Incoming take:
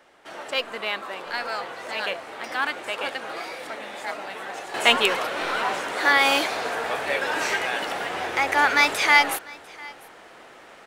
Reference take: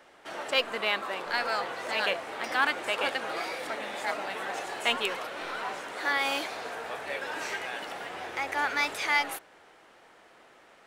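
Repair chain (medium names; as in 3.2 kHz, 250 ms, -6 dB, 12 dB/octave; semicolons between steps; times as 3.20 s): inverse comb 697 ms -23 dB; gain correction -9.5 dB, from 4.74 s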